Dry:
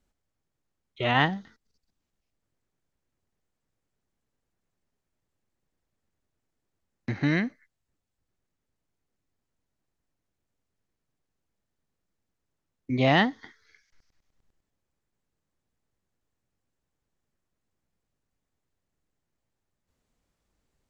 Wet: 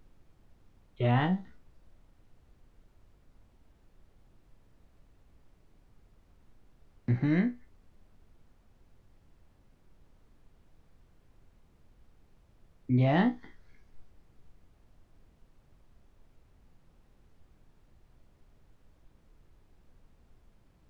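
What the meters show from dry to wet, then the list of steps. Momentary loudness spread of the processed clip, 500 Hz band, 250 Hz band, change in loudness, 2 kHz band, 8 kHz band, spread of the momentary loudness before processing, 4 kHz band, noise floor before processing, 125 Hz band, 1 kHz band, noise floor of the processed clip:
9 LU, -4.5 dB, -0.5 dB, -3.5 dB, -10.5 dB, n/a, 14 LU, -13.0 dB, -83 dBFS, +2.0 dB, -6.5 dB, -65 dBFS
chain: tilt -3 dB/oct; in parallel at +2 dB: limiter -15 dBFS, peak gain reduction 8.5 dB; on the sum: resonator 61 Hz, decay 0.21 s, harmonics all, mix 90%; added noise brown -52 dBFS; gain -7 dB

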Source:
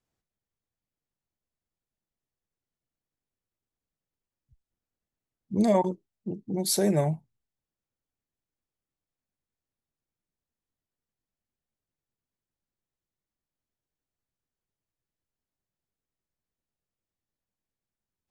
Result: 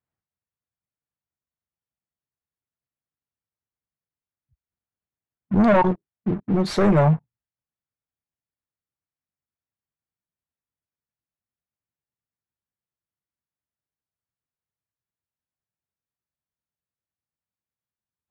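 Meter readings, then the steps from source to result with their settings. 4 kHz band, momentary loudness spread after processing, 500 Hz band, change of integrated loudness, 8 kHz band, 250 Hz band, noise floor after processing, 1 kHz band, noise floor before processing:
-1.0 dB, 11 LU, +5.5 dB, +6.0 dB, under -10 dB, +7.5 dB, under -85 dBFS, +9.5 dB, under -85 dBFS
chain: HPF 84 Hz 12 dB/oct; sample leveller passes 3; LPF 1700 Hz 12 dB/oct; bell 350 Hz -9.5 dB 2.7 oct; gain +7.5 dB

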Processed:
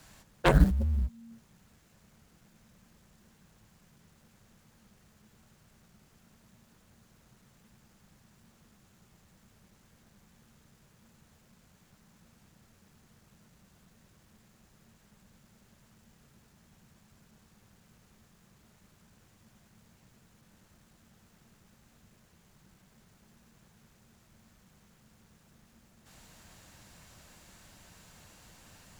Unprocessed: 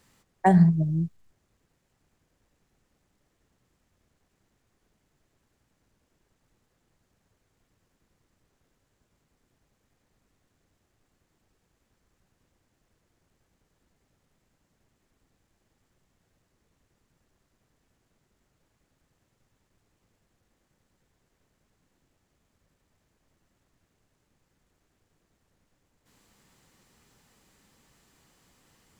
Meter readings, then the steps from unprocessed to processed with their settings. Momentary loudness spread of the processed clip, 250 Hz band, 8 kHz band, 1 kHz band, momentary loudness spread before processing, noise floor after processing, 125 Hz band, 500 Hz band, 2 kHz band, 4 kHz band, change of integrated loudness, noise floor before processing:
10 LU, -8.5 dB, n/a, -8.0 dB, 12 LU, -64 dBFS, -5.5 dB, -0.5 dB, +2.5 dB, +13.5 dB, -5.0 dB, -76 dBFS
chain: G.711 law mismatch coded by mu; frequency shift -230 Hz; added harmonics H 7 -8 dB, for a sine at -6 dBFS; gain -5 dB

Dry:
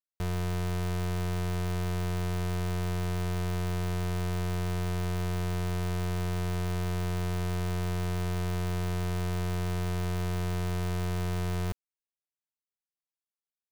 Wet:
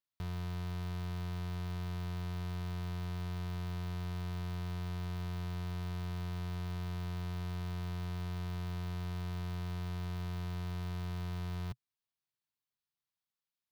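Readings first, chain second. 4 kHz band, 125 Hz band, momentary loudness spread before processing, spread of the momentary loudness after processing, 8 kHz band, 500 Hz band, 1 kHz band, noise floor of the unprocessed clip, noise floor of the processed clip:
-8.0 dB, -7.0 dB, 0 LU, 0 LU, -14.5 dB, -13.5 dB, -9.5 dB, under -85 dBFS, under -85 dBFS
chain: graphic EQ 125/500/1000/4000/8000 Hz +10/-5/+4/+6/-6 dB; limiter -33 dBFS, peak gain reduction 11.5 dB; gain -1 dB

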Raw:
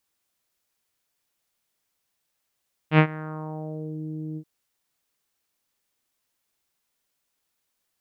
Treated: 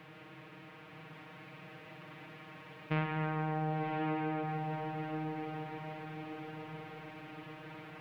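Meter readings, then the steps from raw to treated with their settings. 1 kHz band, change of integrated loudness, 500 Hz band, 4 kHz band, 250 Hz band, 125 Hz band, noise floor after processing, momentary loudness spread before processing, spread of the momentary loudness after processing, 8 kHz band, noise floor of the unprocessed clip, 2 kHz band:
-0.5 dB, -10.5 dB, -5.0 dB, -6.0 dB, -6.0 dB, -8.0 dB, -53 dBFS, 13 LU, 16 LU, n/a, -78 dBFS, -7.0 dB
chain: per-bin compression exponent 0.4; compressor 4:1, threshold -25 dBFS, peak gain reduction 11 dB; vibrato 7 Hz 9.2 cents; diffused feedback echo 1.045 s, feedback 50%, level -3 dB; spring tank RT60 2.4 s, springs 50 ms, chirp 50 ms, DRR 3.5 dB; gain -7 dB

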